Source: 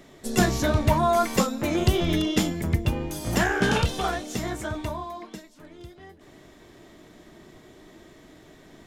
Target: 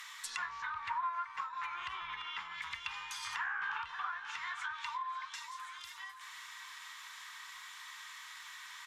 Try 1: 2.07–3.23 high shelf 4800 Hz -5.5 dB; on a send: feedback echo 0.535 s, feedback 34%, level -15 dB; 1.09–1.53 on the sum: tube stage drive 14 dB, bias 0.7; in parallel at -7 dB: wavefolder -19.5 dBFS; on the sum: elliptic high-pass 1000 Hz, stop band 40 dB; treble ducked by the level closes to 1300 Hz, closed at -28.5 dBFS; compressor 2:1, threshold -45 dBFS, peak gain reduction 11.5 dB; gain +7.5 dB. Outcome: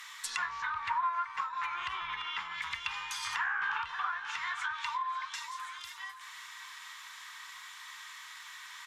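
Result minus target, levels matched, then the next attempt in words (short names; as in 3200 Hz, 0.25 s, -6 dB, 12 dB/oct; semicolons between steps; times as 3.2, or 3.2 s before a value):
compressor: peak gain reduction -4.5 dB
2.07–3.23 high shelf 4800 Hz -5.5 dB; on a send: feedback echo 0.535 s, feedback 34%, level -15 dB; 1.09–1.53 on the sum: tube stage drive 14 dB, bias 0.7; in parallel at -7 dB: wavefolder -19.5 dBFS; on the sum: elliptic high-pass 1000 Hz, stop band 40 dB; treble ducked by the level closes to 1300 Hz, closed at -28.5 dBFS; compressor 2:1, threshold -54.5 dBFS, peak gain reduction 16 dB; gain +7.5 dB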